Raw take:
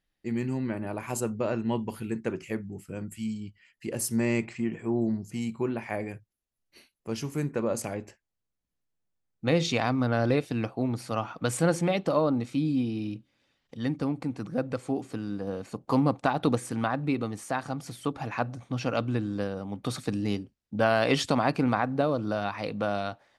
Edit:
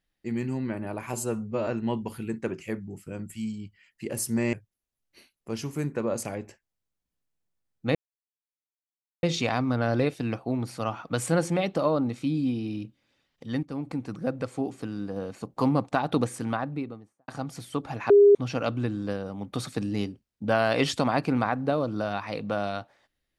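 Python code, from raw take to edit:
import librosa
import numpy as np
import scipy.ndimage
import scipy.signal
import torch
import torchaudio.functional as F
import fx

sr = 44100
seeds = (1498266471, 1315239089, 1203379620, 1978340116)

y = fx.studio_fade_out(x, sr, start_s=16.72, length_s=0.87)
y = fx.edit(y, sr, fx.stretch_span(start_s=1.13, length_s=0.36, factor=1.5),
    fx.cut(start_s=4.35, length_s=1.77),
    fx.insert_silence(at_s=9.54, length_s=1.28),
    fx.fade_in_from(start_s=13.94, length_s=0.28, floor_db=-12.5),
    fx.bleep(start_s=18.41, length_s=0.25, hz=406.0, db=-11.5), tone=tone)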